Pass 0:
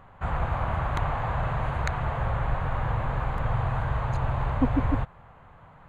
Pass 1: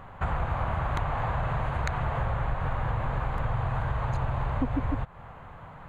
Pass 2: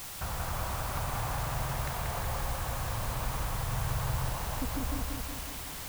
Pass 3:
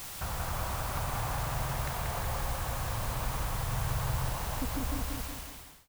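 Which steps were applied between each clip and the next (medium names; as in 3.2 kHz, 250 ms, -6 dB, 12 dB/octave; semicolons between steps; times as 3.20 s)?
compression 4:1, threshold -32 dBFS, peak gain reduction 12.5 dB; trim +6 dB
saturation -21.5 dBFS, distortion -19 dB; word length cut 6-bit, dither triangular; bucket-brigade echo 184 ms, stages 4096, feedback 63%, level -3 dB; trim -6.5 dB
fade out at the end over 0.67 s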